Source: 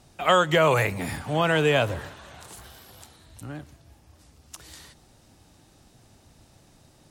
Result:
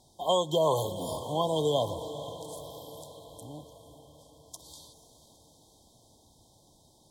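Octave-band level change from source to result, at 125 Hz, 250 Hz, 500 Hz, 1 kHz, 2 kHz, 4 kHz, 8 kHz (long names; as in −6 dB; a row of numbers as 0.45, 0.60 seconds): −8.5 dB, −6.5 dB, −4.0 dB, −6.5 dB, below −40 dB, −4.5 dB, −2.0 dB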